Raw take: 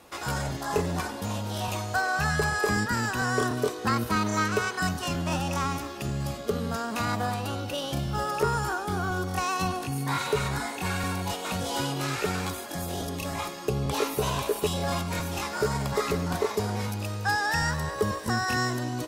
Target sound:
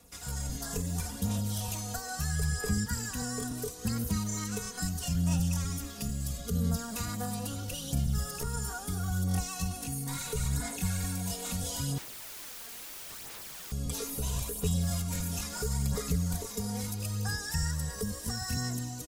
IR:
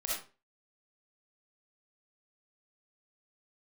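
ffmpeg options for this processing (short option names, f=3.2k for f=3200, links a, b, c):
-filter_complex "[0:a]firequalizer=gain_entry='entry(150,0);entry(230,-12);entry(940,-17);entry(7000,0)':delay=0.05:min_phase=1,acrossover=split=180|6100[a][b][c];[a]acompressor=threshold=-34dB:ratio=4[d];[b]acompressor=threshold=-46dB:ratio=4[e];[c]acompressor=threshold=-46dB:ratio=4[f];[d][e][f]amix=inputs=3:normalize=0,aecho=1:1:4.2:0.68,dynaudnorm=f=110:g=7:m=6dB,asettb=1/sr,asplit=3[g][h][i];[g]atrim=end=11.984[j];[h]atrim=start=11.98:end=13.72,asetpts=PTS-STARTPTS,afade=t=in:d=0.004:c=qsin,afade=t=out:st=1.736:d=0.004:c=qsin,aeval=exprs='(mod(89.1*val(0)+1,2)-1)/89.1':c=same[k];[i]atrim=start=13.716[l];[j][k]acrossfade=d=0.004:c1=hsin:c2=qsin[m];[m][l]acrossfade=d=0.004:c1=qsin:c2=hsin,aphaser=in_gain=1:out_gain=1:delay=4.4:decay=0.39:speed=0.75:type=sinusoidal,volume=-1dB"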